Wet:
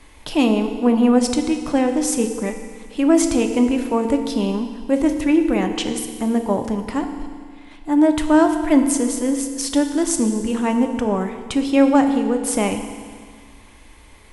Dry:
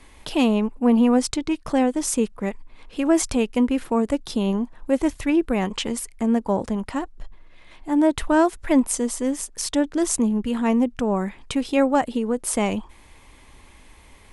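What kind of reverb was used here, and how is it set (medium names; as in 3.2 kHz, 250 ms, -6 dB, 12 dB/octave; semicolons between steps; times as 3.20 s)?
FDN reverb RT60 1.9 s, low-frequency decay 1.05×, high-frequency decay 0.95×, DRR 5.5 dB; trim +1.5 dB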